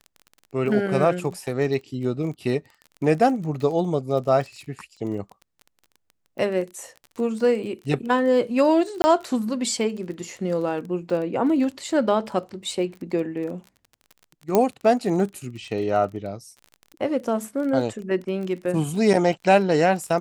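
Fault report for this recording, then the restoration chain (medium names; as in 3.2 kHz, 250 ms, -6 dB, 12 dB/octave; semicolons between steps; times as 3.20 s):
crackle 24 per s -32 dBFS
9.02–9.04 s: dropout 20 ms
14.55 s: pop -6 dBFS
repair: de-click; interpolate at 9.02 s, 20 ms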